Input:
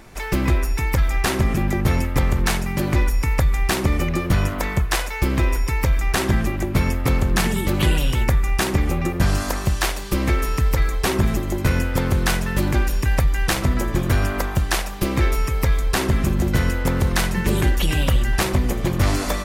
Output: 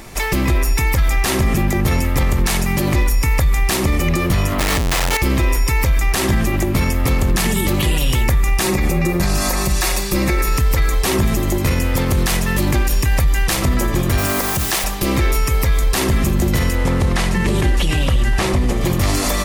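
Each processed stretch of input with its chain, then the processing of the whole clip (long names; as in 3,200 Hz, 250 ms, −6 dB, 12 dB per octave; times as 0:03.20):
0:04.59–0:05.17: high shelf with overshoot 2,600 Hz −7 dB, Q 1.5 + comparator with hysteresis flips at −35.5 dBFS + highs frequency-modulated by the lows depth 0.12 ms
0:08.63–0:10.58: notch filter 3,100 Hz, Q 9.3 + comb filter 5.5 ms, depth 52%
0:14.18–0:14.84: high-pass filter 99 Hz + bit-depth reduction 6 bits, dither triangular
0:16.75–0:18.81: variable-slope delta modulation 64 kbit/s + high-shelf EQ 4,800 Hz −8 dB
whole clip: high-shelf EQ 4,100 Hz +6.5 dB; notch filter 1,500 Hz, Q 12; brickwall limiter −16 dBFS; level +7.5 dB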